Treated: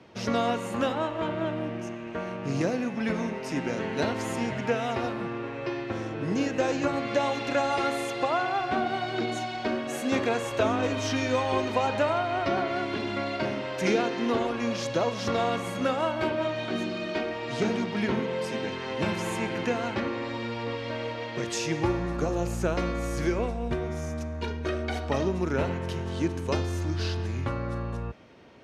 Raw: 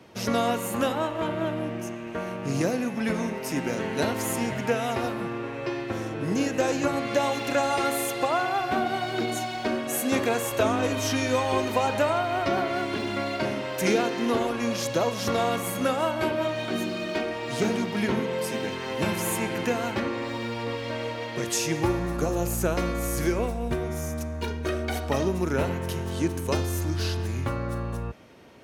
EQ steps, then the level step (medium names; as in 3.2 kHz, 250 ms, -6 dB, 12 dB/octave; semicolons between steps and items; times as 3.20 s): low-pass 5.5 kHz 12 dB/octave; -1.5 dB